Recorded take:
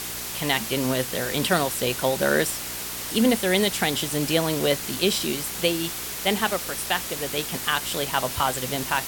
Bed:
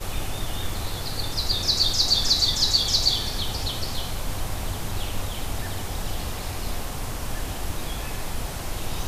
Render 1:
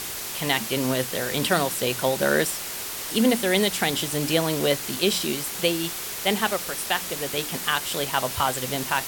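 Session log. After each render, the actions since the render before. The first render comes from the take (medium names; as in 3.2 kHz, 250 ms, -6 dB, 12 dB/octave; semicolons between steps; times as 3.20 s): de-hum 60 Hz, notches 5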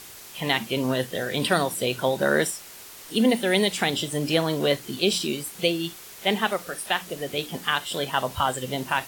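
noise print and reduce 11 dB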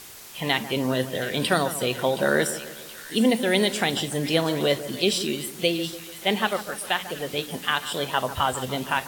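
two-band feedback delay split 1.8 kHz, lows 146 ms, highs 723 ms, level -13 dB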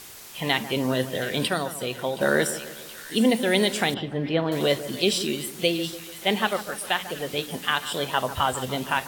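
1.48–2.21 s: gain -4.5 dB; 3.94–4.52 s: distance through air 380 m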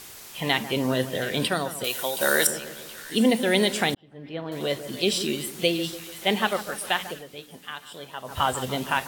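1.84–2.47 s: RIAA curve recording; 3.95–5.26 s: fade in; 7.06–8.42 s: dip -12.5 dB, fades 0.18 s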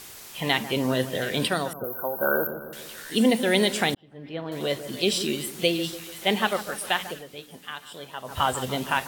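1.73–2.73 s: brick-wall FIR band-stop 1.6–12 kHz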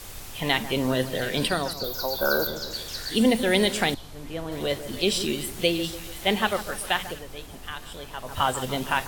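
add bed -14 dB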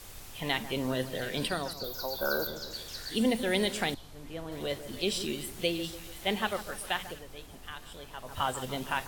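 trim -7 dB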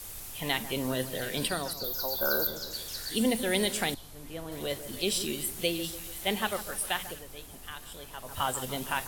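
peaking EQ 12 kHz +10.5 dB 1.2 oct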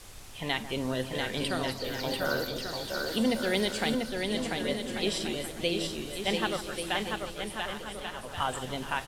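distance through air 66 m; bouncing-ball echo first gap 690 ms, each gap 0.65×, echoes 5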